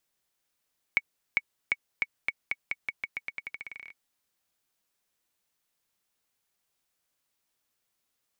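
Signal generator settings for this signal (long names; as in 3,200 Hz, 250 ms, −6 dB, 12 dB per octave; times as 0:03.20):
bouncing ball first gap 0.40 s, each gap 0.87, 2,230 Hz, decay 41 ms −10.5 dBFS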